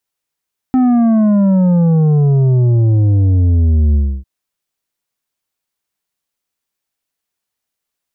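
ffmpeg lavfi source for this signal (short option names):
-f lavfi -i "aevalsrc='0.355*clip((3.5-t)/0.29,0,1)*tanh(2.37*sin(2*PI*260*3.5/log(65/260)*(exp(log(65/260)*t/3.5)-1)))/tanh(2.37)':d=3.5:s=44100"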